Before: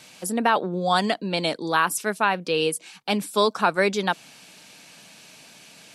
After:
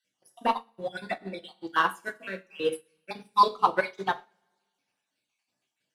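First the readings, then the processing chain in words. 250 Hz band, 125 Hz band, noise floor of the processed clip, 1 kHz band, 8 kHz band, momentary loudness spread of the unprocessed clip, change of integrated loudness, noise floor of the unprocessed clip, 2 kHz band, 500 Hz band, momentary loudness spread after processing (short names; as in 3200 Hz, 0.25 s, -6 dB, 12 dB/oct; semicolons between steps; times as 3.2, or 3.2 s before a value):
-12.5 dB, -14.5 dB, -84 dBFS, -2.5 dB, -20.0 dB, 6 LU, -5.0 dB, -49 dBFS, -6.5 dB, -8.5 dB, 17 LU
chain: random spectral dropouts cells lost 48%; dynamic EQ 8400 Hz, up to -5 dB, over -51 dBFS, Q 1.5; reverb removal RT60 0.67 s; sample leveller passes 1; high shelf 3900 Hz -3.5 dB; notches 60/120/180/240/300/360/420/480 Hz; two-slope reverb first 0.54 s, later 1.9 s, from -16 dB, DRR 0.5 dB; upward expander 2.5:1, over -34 dBFS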